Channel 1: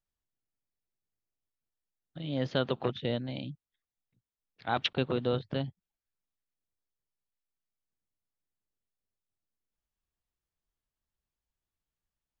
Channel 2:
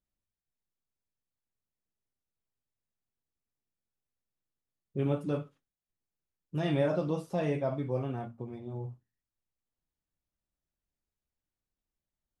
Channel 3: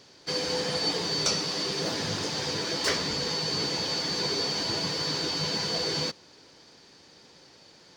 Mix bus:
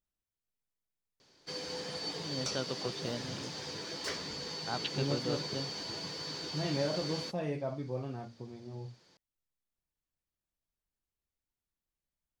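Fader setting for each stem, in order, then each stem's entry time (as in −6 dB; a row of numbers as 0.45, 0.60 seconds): −7.5, −5.0, −11.0 decibels; 0.00, 0.00, 1.20 seconds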